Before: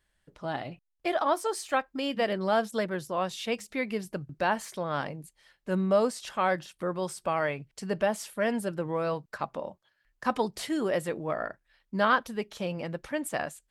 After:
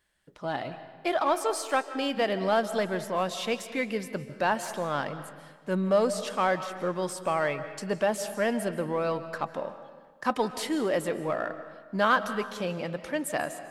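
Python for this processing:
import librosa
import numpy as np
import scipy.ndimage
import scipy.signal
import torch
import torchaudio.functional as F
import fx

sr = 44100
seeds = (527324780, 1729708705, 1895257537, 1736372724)

p1 = fx.low_shelf(x, sr, hz=88.0, db=-11.5)
p2 = np.clip(p1, -10.0 ** (-30.0 / 20.0), 10.0 ** (-30.0 / 20.0))
p3 = p1 + (p2 * 10.0 ** (-9.5 / 20.0))
y = fx.rev_freeverb(p3, sr, rt60_s=1.5, hf_ratio=0.75, predelay_ms=110, drr_db=11.5)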